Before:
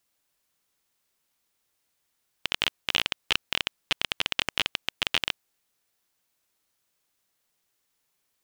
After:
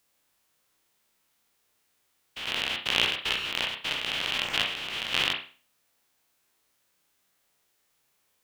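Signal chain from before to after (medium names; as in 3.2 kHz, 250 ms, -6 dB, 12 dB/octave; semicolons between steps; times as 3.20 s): spectrogram pixelated in time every 100 ms; on a send: high-pass 200 Hz 6 dB/octave + reverberation, pre-delay 32 ms, DRR 1.5 dB; on the sum: trim +5 dB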